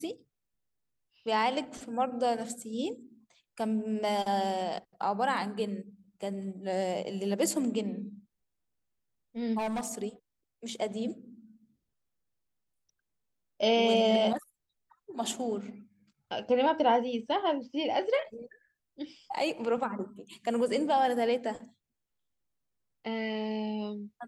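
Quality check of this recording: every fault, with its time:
0:09.58–0:09.98: clipping −29.5 dBFS

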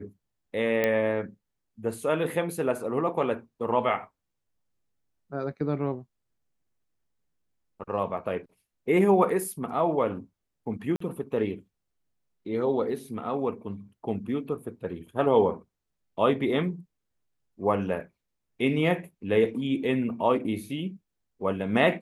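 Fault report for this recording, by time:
0:00.84: click −12 dBFS
0:10.96–0:11.00: drop-out 44 ms

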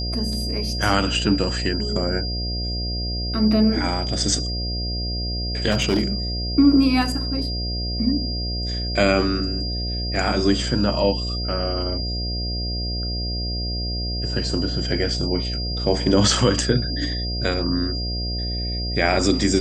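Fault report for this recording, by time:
mains buzz 60 Hz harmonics 12 −27 dBFS
whistle 4,800 Hz −28 dBFS
0:05.70–0:06.05: clipping −14 dBFS

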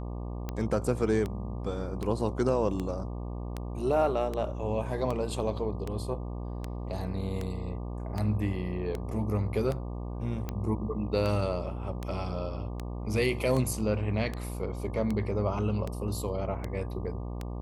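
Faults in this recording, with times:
mains buzz 60 Hz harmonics 20 −36 dBFS
scratch tick 78 rpm −20 dBFS

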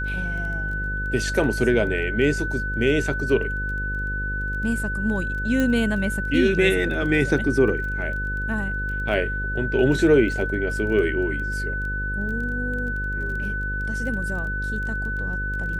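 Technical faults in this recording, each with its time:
mains buzz 50 Hz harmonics 11 −29 dBFS
surface crackle 14 per second −32 dBFS
whistle 1,500 Hz −27 dBFS
0:05.60: click −11 dBFS

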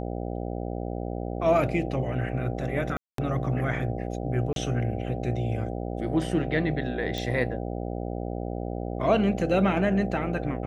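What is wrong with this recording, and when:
mains buzz 60 Hz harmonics 13 −32 dBFS
0:02.97–0:03.18: drop-out 213 ms
0:04.53–0:04.56: drop-out 32 ms
0:07.18: click

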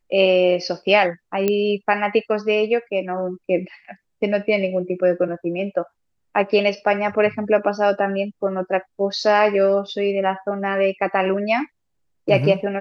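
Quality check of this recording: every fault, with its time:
0:01.48: click −7 dBFS

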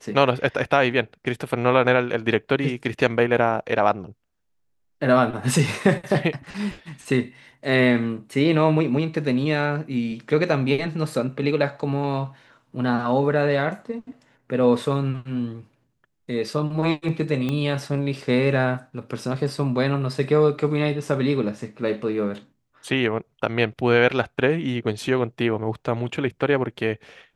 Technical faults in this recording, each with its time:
0:17.49: click −14 dBFS

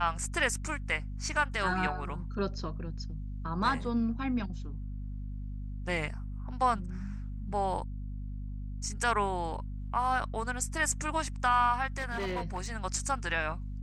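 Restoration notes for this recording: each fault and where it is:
mains hum 50 Hz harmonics 5 −38 dBFS
0:11.96–0:12.67: clipping −29.5 dBFS

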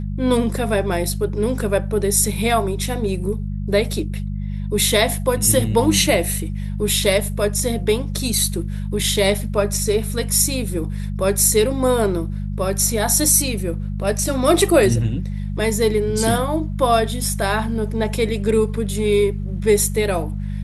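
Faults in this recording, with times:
mains hum 50 Hz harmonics 4 −25 dBFS

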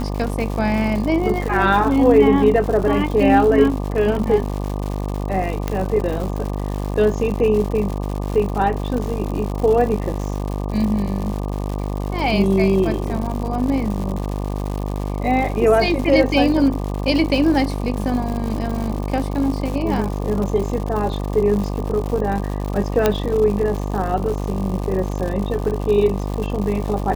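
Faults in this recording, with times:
mains buzz 50 Hz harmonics 24 −24 dBFS
surface crackle 190 per second −26 dBFS
0:05.68: click −8 dBFS
0:23.06: click −2 dBFS

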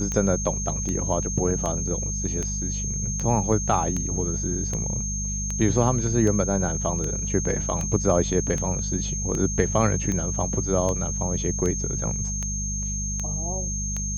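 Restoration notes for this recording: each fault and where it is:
mains hum 50 Hz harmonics 4 −30 dBFS
scratch tick 78 rpm −16 dBFS
whistle 6,400 Hz −29 dBFS

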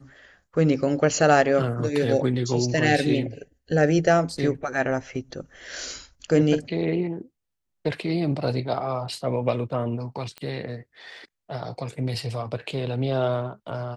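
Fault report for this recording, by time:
0:10.38: click −22 dBFS

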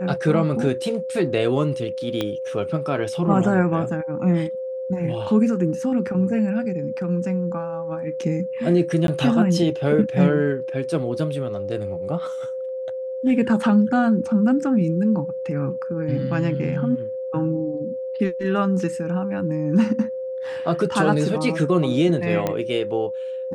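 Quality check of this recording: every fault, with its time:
whistle 520 Hz −26 dBFS
0:02.21: click −11 dBFS
0:09.07–0:09.08: drop-out 12 ms
0:22.47: click −10 dBFS

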